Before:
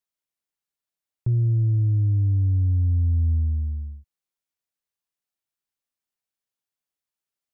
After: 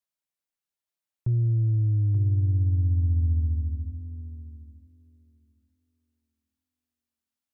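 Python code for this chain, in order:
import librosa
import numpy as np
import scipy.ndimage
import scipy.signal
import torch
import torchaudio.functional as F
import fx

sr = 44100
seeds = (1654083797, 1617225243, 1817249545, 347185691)

p1 = fx.notch(x, sr, hz=430.0, q=12.0)
p2 = p1 + fx.echo_thinned(p1, sr, ms=882, feedback_pct=28, hz=230.0, wet_db=-4.5, dry=0)
y = F.gain(torch.from_numpy(p2), -2.5).numpy()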